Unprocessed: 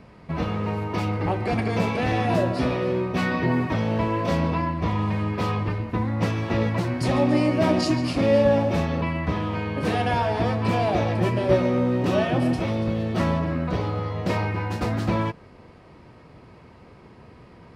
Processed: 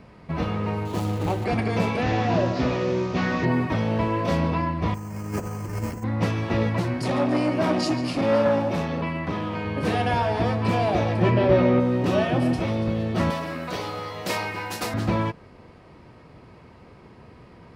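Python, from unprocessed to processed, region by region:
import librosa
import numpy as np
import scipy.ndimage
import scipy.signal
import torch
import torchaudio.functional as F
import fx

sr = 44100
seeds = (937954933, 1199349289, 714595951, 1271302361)

y = fx.chain(x, sr, fx.median_filter(points=25),
    fx.high_shelf(hz=5200.0, db=10.5), at=(0.85, 1.45))
y = fx.chain(y, sr, fx.delta_mod(bps=32000, step_db=-35.5),
    fx.doppler_dist(depth_ms=0.11), at=(2.02, 3.45))
y = fx.chain(y, sr, fx.delta_mod(bps=16000, step_db=-39.0),
    fx.over_compress(threshold_db=-29.0, ratio=-0.5),
    fx.resample_bad(factor=6, down='filtered', up='hold'), at=(4.94, 6.04))
y = fx.chain(y, sr, fx.highpass(hz=120.0, slope=12),
    fx.transformer_sat(knee_hz=600.0), at=(6.99, 9.65))
y = fx.chain(y, sr, fx.lowpass(hz=3700.0, slope=12),
    fx.env_flatten(amount_pct=50), at=(11.22, 11.8))
y = fx.chain(y, sr, fx.highpass(hz=41.0, slope=12),
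    fx.riaa(side='recording'), at=(13.3, 14.94))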